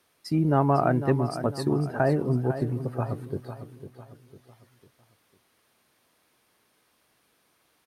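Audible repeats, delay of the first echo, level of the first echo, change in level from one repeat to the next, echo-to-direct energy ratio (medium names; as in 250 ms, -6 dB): 4, 501 ms, -11.0 dB, -8.0 dB, -10.0 dB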